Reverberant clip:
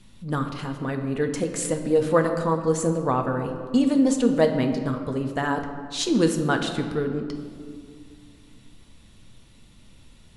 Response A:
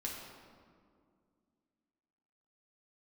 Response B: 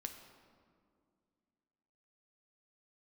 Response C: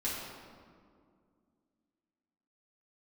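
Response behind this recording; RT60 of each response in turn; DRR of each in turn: B; 2.2 s, 2.2 s, 2.2 s; -3.5 dB, 4.5 dB, -8.5 dB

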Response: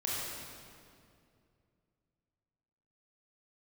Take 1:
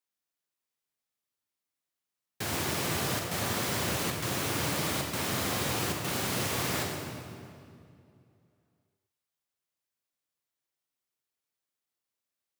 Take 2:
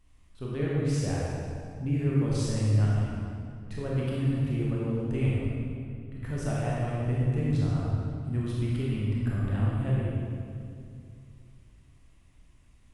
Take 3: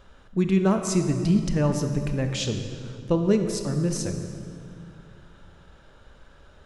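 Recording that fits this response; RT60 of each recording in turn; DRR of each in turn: 2; 2.4 s, 2.4 s, 2.4 s; 0.5 dB, -6.5 dB, 5.5 dB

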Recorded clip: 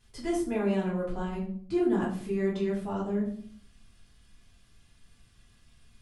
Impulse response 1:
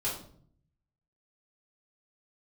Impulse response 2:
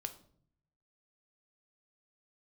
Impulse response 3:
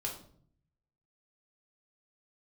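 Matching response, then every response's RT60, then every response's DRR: 1; 0.55 s, 0.60 s, 0.55 s; -9.0 dB, 7.0 dB, -2.0 dB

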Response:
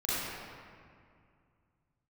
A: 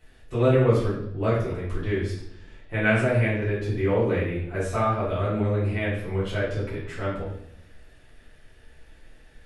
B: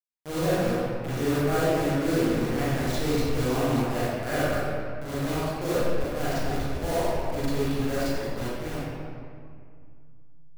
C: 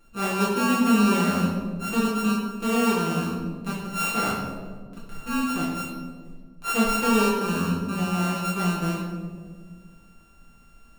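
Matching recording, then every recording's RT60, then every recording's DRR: B; 0.75 s, 2.2 s, 1.7 s; -11.5 dB, -11.0 dB, -8.5 dB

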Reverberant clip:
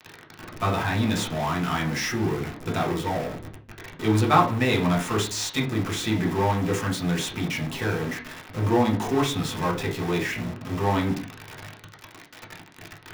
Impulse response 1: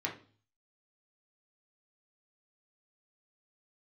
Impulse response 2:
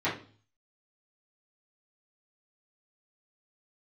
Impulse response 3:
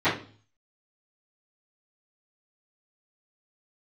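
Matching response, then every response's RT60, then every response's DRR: 1; 0.40 s, 0.40 s, 0.40 s; -2.0 dB, -11.5 dB, -20.0 dB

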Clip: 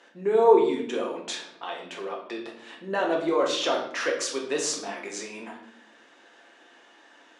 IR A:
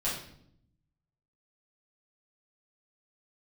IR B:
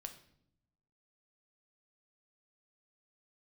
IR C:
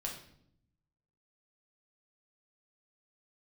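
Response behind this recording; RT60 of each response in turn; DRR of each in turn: C; 0.70 s, 0.70 s, 0.70 s; -9.5 dB, 6.0 dB, -1.5 dB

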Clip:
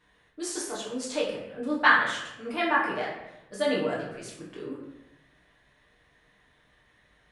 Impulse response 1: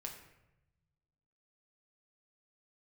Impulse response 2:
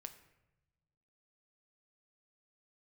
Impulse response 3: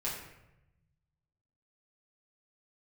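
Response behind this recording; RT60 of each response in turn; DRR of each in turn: 3; 0.90 s, 1.0 s, 0.90 s; 1.0 dB, 7.5 dB, -6.5 dB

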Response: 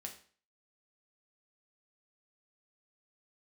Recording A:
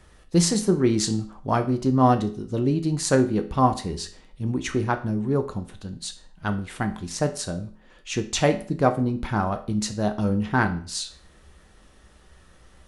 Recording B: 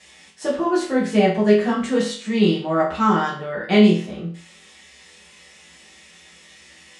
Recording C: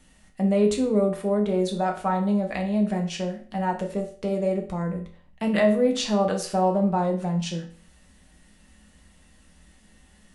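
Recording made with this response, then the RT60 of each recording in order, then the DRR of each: C; 0.45 s, 0.45 s, 0.45 s; 6.0 dB, -8.5 dB, 1.5 dB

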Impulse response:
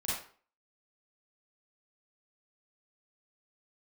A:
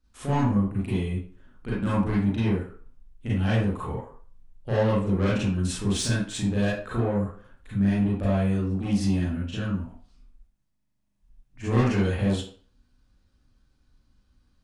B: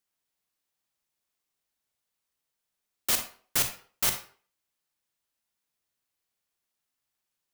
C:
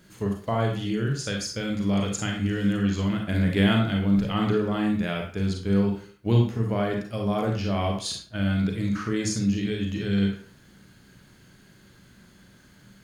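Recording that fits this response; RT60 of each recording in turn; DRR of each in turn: A; 0.45 s, 0.45 s, 0.45 s; -9.0 dB, 6.5 dB, 1.0 dB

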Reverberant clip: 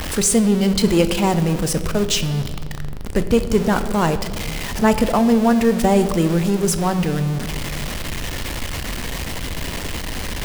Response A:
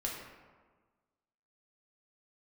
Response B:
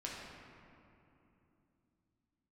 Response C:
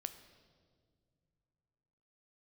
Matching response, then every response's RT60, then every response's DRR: C; 1.4 s, 3.0 s, no single decay rate; -3.0 dB, -4.5 dB, 9.5 dB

